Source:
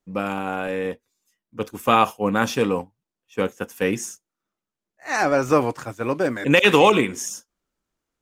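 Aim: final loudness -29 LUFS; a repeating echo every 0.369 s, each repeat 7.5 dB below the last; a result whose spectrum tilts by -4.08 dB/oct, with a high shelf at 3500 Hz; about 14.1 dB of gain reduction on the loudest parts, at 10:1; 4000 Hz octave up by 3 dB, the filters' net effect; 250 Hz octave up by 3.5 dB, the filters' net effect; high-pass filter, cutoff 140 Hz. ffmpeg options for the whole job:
-af "highpass=140,equalizer=f=250:t=o:g=5,highshelf=f=3.5k:g=-3,equalizer=f=4k:t=o:g=6,acompressor=threshold=-23dB:ratio=10,aecho=1:1:369|738|1107|1476|1845:0.422|0.177|0.0744|0.0312|0.0131"

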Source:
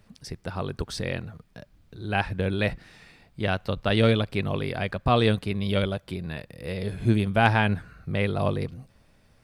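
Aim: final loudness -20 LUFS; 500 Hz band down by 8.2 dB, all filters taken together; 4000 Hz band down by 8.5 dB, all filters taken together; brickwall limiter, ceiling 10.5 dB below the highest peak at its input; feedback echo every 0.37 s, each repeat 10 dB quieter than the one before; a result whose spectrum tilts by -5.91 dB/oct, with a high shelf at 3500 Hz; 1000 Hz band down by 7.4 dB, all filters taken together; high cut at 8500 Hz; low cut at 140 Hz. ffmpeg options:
-af "highpass=140,lowpass=8.5k,equalizer=f=500:t=o:g=-8.5,equalizer=f=1k:t=o:g=-6,highshelf=f=3.5k:g=-4,equalizer=f=4k:t=o:g=-8,alimiter=limit=-20dB:level=0:latency=1,aecho=1:1:370|740|1110|1480:0.316|0.101|0.0324|0.0104,volume=14dB"

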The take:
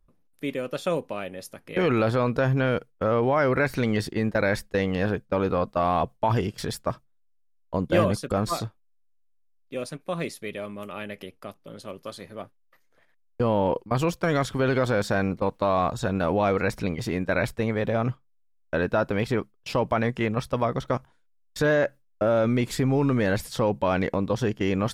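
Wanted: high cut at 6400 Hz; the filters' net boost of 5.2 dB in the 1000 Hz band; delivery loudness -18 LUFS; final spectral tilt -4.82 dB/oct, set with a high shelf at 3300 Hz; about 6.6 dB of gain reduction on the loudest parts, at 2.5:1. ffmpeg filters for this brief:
-af "lowpass=6.4k,equalizer=f=1k:t=o:g=6,highshelf=f=3.3k:g=5.5,acompressor=threshold=-25dB:ratio=2.5,volume=11dB"

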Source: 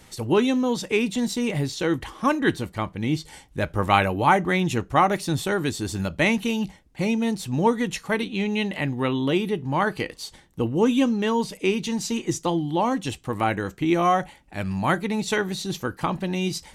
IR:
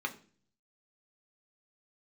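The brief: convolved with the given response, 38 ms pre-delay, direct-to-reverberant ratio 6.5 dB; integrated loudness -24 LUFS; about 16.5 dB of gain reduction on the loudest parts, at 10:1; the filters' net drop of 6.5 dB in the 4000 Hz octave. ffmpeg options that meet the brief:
-filter_complex "[0:a]equalizer=f=4k:t=o:g=-9,acompressor=threshold=-31dB:ratio=10,asplit=2[a][b];[1:a]atrim=start_sample=2205,adelay=38[c];[b][c]afir=irnorm=-1:irlink=0,volume=-10.5dB[d];[a][d]amix=inputs=2:normalize=0,volume=11.5dB"

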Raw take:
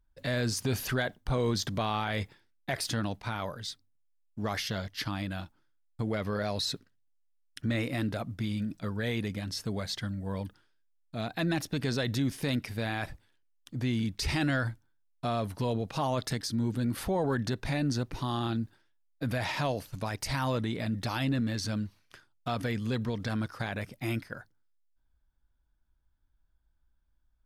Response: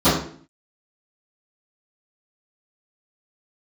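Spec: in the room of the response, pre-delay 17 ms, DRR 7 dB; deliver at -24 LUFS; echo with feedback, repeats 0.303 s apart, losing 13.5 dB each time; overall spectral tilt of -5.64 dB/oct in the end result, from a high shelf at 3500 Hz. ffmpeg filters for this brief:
-filter_complex "[0:a]highshelf=f=3.5k:g=-4,aecho=1:1:303|606:0.211|0.0444,asplit=2[a][b];[1:a]atrim=start_sample=2205,adelay=17[c];[b][c]afir=irnorm=-1:irlink=0,volume=-30dB[d];[a][d]amix=inputs=2:normalize=0,volume=7dB"

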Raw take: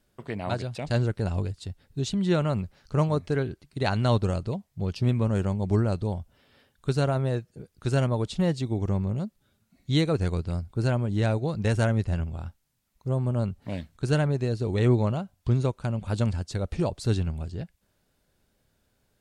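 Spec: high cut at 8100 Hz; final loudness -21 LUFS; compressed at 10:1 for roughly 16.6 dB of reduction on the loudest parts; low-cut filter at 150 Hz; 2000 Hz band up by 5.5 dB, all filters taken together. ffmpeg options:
-af "highpass=150,lowpass=8.1k,equalizer=f=2k:t=o:g=7.5,acompressor=threshold=-36dB:ratio=10,volume=21dB"

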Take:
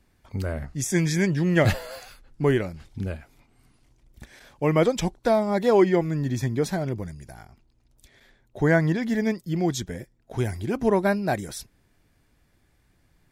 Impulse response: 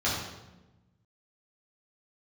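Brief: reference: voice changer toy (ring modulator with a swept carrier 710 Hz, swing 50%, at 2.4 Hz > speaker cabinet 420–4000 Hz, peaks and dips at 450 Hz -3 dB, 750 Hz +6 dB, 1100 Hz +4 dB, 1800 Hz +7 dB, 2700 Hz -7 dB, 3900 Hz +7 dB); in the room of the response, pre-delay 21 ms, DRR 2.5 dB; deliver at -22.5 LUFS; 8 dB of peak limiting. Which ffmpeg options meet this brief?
-filter_complex "[0:a]alimiter=limit=-15.5dB:level=0:latency=1,asplit=2[a][b];[1:a]atrim=start_sample=2205,adelay=21[c];[b][c]afir=irnorm=-1:irlink=0,volume=-14dB[d];[a][d]amix=inputs=2:normalize=0,aeval=exprs='val(0)*sin(2*PI*710*n/s+710*0.5/2.4*sin(2*PI*2.4*n/s))':c=same,highpass=420,equalizer=f=450:t=q:w=4:g=-3,equalizer=f=750:t=q:w=4:g=6,equalizer=f=1.1k:t=q:w=4:g=4,equalizer=f=1.8k:t=q:w=4:g=7,equalizer=f=2.7k:t=q:w=4:g=-7,equalizer=f=3.9k:t=q:w=4:g=7,lowpass=f=4k:w=0.5412,lowpass=f=4k:w=1.3066,volume=2dB"

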